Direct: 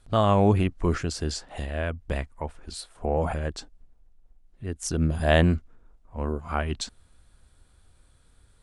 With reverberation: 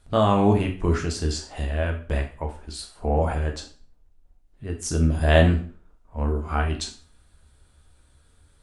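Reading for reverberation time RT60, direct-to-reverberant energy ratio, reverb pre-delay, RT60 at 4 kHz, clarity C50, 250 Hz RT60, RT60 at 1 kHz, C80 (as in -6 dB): 0.45 s, 2.5 dB, 5 ms, 0.40 s, 10.0 dB, 0.40 s, 0.40 s, 14.0 dB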